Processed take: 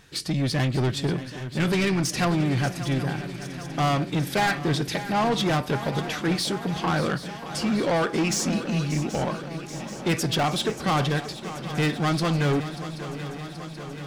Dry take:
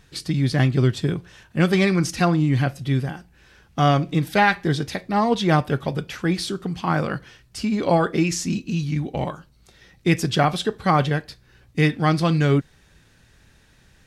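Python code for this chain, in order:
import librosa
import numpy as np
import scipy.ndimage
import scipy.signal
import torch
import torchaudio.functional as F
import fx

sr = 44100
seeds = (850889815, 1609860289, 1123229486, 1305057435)

p1 = fx.low_shelf(x, sr, hz=110.0, db=-10.0)
p2 = 10.0 ** (-22.5 / 20.0) * np.tanh(p1 / 10.0 ** (-22.5 / 20.0))
p3 = p2 + fx.echo_swing(p2, sr, ms=780, ratio=3, feedback_pct=69, wet_db=-13.5, dry=0)
y = F.gain(torch.from_numpy(p3), 3.0).numpy()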